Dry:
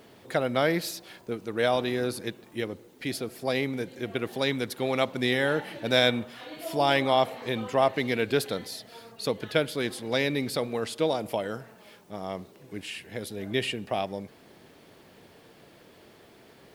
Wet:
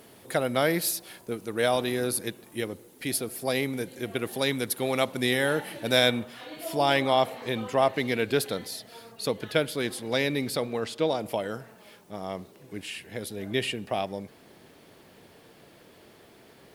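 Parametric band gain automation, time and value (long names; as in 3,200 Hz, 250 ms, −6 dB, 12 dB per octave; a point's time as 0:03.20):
parametric band 11,000 Hz 0.84 octaves
0:05.89 +13.5 dB
0:06.34 +4.5 dB
0:10.47 +4.5 dB
0:10.98 −7 dB
0:11.37 +3.5 dB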